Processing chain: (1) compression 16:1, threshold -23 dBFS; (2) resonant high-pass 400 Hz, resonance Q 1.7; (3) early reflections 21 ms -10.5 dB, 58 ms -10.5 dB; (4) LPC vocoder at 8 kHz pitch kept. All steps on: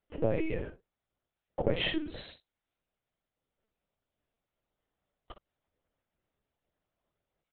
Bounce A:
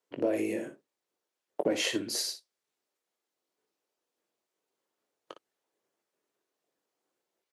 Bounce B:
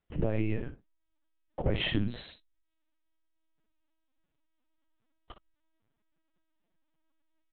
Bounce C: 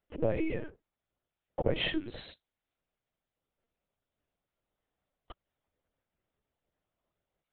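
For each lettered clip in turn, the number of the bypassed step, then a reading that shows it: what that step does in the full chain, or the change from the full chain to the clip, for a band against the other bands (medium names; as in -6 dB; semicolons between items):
4, 125 Hz band -12.5 dB; 2, 125 Hz band +6.5 dB; 3, momentary loudness spread change +2 LU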